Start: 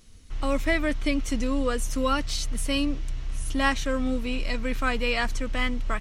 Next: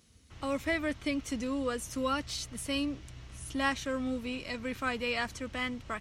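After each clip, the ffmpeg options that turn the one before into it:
ffmpeg -i in.wav -af "highpass=frequency=60:width=0.5412,highpass=frequency=60:width=1.3066,volume=-6dB" out.wav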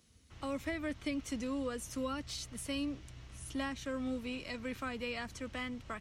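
ffmpeg -i in.wav -filter_complex "[0:a]acrossover=split=370[link_01][link_02];[link_02]acompressor=threshold=-34dB:ratio=6[link_03];[link_01][link_03]amix=inputs=2:normalize=0,volume=-3.5dB" out.wav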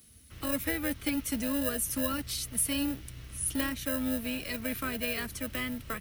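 ffmpeg -i in.wav -filter_complex "[0:a]acrossover=split=380|940[link_01][link_02][link_03];[link_02]acrusher=samples=39:mix=1:aa=0.000001[link_04];[link_01][link_04][link_03]amix=inputs=3:normalize=0,aexciter=amount=6.8:drive=4.6:freq=9500,volume=6dB" out.wav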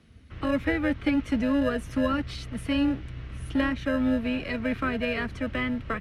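ffmpeg -i in.wav -af "lowpass=2200,volume=7.5dB" out.wav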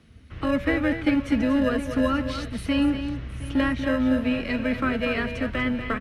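ffmpeg -i in.wav -filter_complex "[0:a]bandreject=frequency=189.8:width_type=h:width=4,bandreject=frequency=379.6:width_type=h:width=4,bandreject=frequency=569.4:width_type=h:width=4,bandreject=frequency=759.2:width_type=h:width=4,bandreject=frequency=949:width_type=h:width=4,bandreject=frequency=1138.8:width_type=h:width=4,bandreject=frequency=1328.6:width_type=h:width=4,bandreject=frequency=1518.4:width_type=h:width=4,bandreject=frequency=1708.2:width_type=h:width=4,bandreject=frequency=1898:width_type=h:width=4,bandreject=frequency=2087.8:width_type=h:width=4,bandreject=frequency=2277.6:width_type=h:width=4,bandreject=frequency=2467.4:width_type=h:width=4,bandreject=frequency=2657.2:width_type=h:width=4,bandreject=frequency=2847:width_type=h:width=4,bandreject=frequency=3036.8:width_type=h:width=4,bandreject=frequency=3226.6:width_type=h:width=4,bandreject=frequency=3416.4:width_type=h:width=4,bandreject=frequency=3606.2:width_type=h:width=4,bandreject=frequency=3796:width_type=h:width=4,bandreject=frequency=3985.8:width_type=h:width=4,bandreject=frequency=4175.6:width_type=h:width=4,bandreject=frequency=4365.4:width_type=h:width=4,bandreject=frequency=4555.2:width_type=h:width=4,bandreject=frequency=4745:width_type=h:width=4,bandreject=frequency=4934.8:width_type=h:width=4,bandreject=frequency=5124.6:width_type=h:width=4,asplit=2[link_01][link_02];[link_02]aecho=0:1:239|715:0.355|0.141[link_03];[link_01][link_03]amix=inputs=2:normalize=0,volume=2.5dB" out.wav

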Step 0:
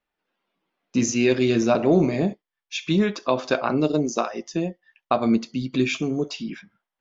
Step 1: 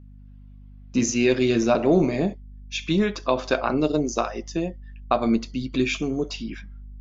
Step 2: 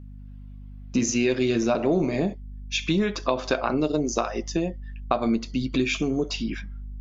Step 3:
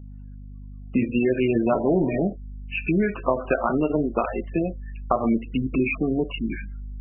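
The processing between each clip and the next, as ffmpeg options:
ffmpeg -i in.wav -af "aeval=exprs='val(0)+0.00631*(sin(2*PI*50*n/s)+sin(2*PI*2*50*n/s)/2+sin(2*PI*3*50*n/s)/3+sin(2*PI*4*50*n/s)/4+sin(2*PI*5*50*n/s)/5)':channel_layout=same,asubboost=boost=4.5:cutoff=52" out.wav
ffmpeg -i in.wav -af "acompressor=threshold=-26dB:ratio=2.5,volume=4dB" out.wav
ffmpeg -i in.wav -af "volume=2dB" -ar 22050 -c:a libmp3lame -b:a 8k out.mp3

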